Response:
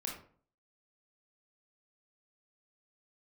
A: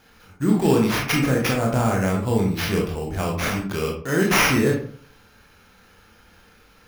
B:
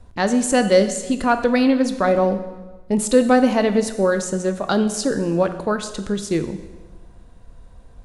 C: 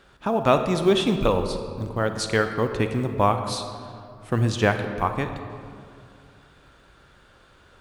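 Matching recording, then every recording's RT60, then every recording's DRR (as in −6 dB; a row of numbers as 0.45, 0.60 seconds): A; 0.50, 1.3, 2.4 seconds; −1.5, 8.5, 7.0 decibels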